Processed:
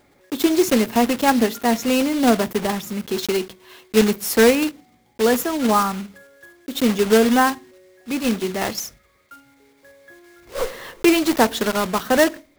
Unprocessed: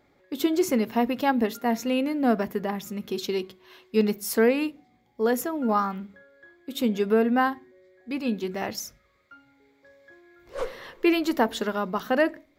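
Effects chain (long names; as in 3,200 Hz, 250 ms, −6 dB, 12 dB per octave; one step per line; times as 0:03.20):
one scale factor per block 3 bits
level +6 dB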